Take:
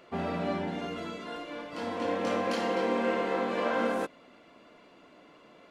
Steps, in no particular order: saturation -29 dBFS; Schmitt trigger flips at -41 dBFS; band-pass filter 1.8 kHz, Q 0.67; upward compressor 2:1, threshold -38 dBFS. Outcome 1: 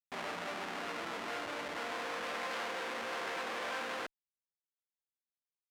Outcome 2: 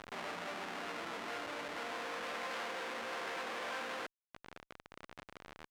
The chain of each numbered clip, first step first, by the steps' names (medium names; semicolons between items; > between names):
Schmitt trigger > upward compressor > saturation > band-pass filter; saturation > upward compressor > Schmitt trigger > band-pass filter